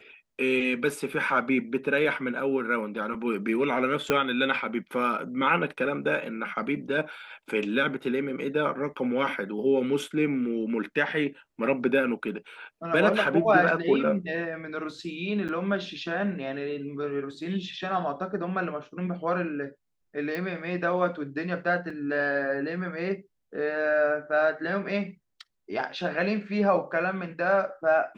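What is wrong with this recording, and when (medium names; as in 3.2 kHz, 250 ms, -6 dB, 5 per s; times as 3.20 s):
4.10 s: pop -9 dBFS
15.48–15.49 s: dropout 8 ms
20.35 s: pop -20 dBFS
21.90 s: dropout 3.7 ms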